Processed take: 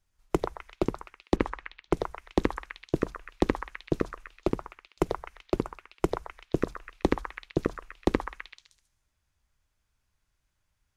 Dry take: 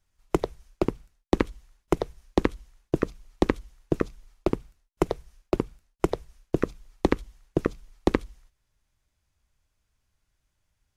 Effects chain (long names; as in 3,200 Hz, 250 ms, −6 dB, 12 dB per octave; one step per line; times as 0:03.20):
echo through a band-pass that steps 128 ms, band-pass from 1,200 Hz, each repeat 0.7 octaves, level −0.5 dB
0:01.36–0:02.00: low-pass that shuts in the quiet parts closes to 2,400 Hz, open at −20.5 dBFS
level −2.5 dB